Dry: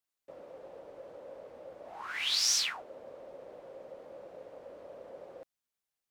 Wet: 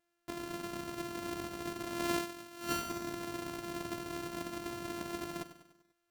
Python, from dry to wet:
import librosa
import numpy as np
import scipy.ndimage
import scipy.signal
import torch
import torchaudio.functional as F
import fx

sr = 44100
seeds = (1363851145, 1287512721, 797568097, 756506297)

p1 = np.r_[np.sort(x[:len(x) // 128 * 128].reshape(-1, 128), axis=1).ravel(), x[len(x) // 128 * 128:]]
p2 = p1 + fx.echo_feedback(p1, sr, ms=98, feedback_pct=52, wet_db=-12.5, dry=0)
p3 = fx.over_compress(p2, sr, threshold_db=-38.0, ratio=-0.5)
y = F.gain(torch.from_numpy(p3), 3.5).numpy()